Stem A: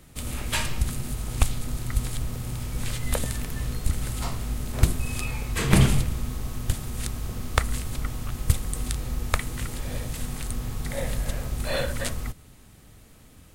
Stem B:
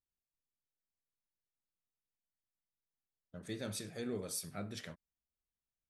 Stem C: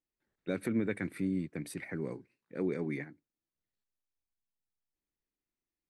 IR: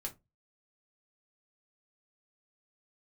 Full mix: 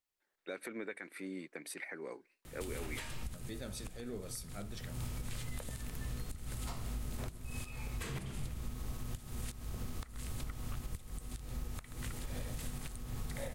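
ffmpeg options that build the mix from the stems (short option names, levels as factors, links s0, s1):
-filter_complex "[0:a]acompressor=threshold=0.02:ratio=8,adelay=2450,volume=1,asplit=2[s0][s1];[s1]volume=0.133[s2];[1:a]volume=0.708,asplit=2[s3][s4];[2:a]highpass=550,acontrast=89,volume=0.596[s5];[s4]apad=whole_len=705496[s6];[s0][s6]sidechaincompress=threshold=0.00158:ratio=5:attack=43:release=140[s7];[s2]aecho=0:1:131:1[s8];[s7][s3][s5][s8]amix=inputs=4:normalize=0,alimiter=level_in=2.11:limit=0.0631:level=0:latency=1:release=307,volume=0.473"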